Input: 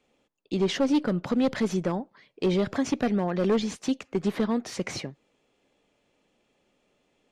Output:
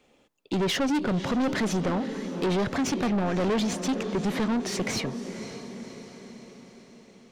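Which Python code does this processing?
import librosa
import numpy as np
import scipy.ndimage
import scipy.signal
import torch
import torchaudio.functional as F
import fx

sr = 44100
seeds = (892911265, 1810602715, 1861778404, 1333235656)

y = fx.echo_diffused(x, sr, ms=535, feedback_pct=54, wet_db=-14.5)
y = 10.0 ** (-29.5 / 20.0) * np.tanh(y / 10.0 ** (-29.5 / 20.0))
y = F.gain(torch.from_numpy(y), 7.0).numpy()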